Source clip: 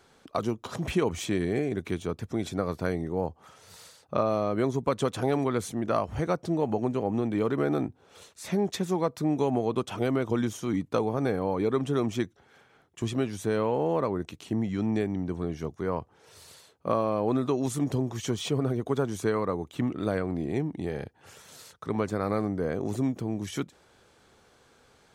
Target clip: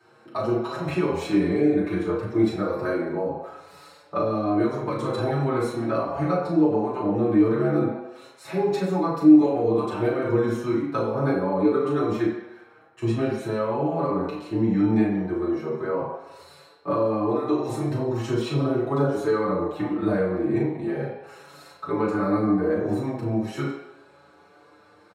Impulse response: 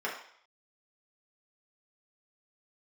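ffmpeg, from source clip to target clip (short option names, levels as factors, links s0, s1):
-filter_complex "[0:a]equalizer=f=70:w=1.6:g=8.5,asplit=2[s0][s1];[s1]adelay=36,volume=0.473[s2];[s0][s2]amix=inputs=2:normalize=0[s3];[1:a]atrim=start_sample=2205,asetrate=33516,aresample=44100[s4];[s3][s4]afir=irnorm=-1:irlink=0,acrossover=split=360|3000[s5][s6][s7];[s6]acompressor=threshold=0.0794:ratio=6[s8];[s5][s8][s7]amix=inputs=3:normalize=0,asplit=2[s9][s10];[s10]adelay=6,afreqshift=0.39[s11];[s9][s11]amix=inputs=2:normalize=1"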